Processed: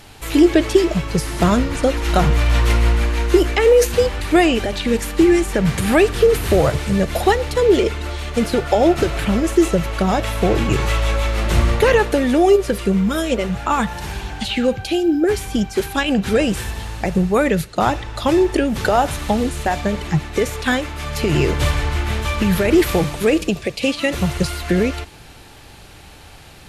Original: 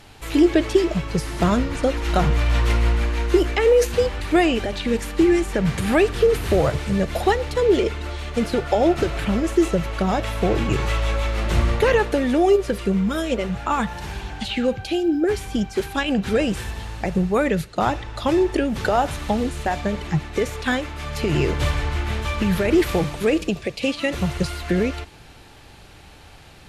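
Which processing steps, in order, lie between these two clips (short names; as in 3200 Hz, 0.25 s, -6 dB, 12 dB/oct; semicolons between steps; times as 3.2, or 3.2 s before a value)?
high shelf 8600 Hz +7.5 dB; gain +3.5 dB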